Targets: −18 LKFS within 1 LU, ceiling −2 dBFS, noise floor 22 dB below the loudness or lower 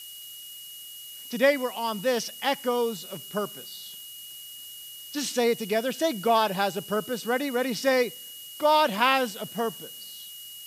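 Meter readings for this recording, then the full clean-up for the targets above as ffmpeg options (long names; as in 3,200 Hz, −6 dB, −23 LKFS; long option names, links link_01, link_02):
interfering tone 2,900 Hz; level of the tone −43 dBFS; background noise floor −43 dBFS; target noise floor −48 dBFS; integrated loudness −26.0 LKFS; sample peak −6.5 dBFS; target loudness −18.0 LKFS
→ -af "bandreject=frequency=2900:width=30"
-af "afftdn=noise_reduction=6:noise_floor=-43"
-af "volume=8dB,alimiter=limit=-2dB:level=0:latency=1"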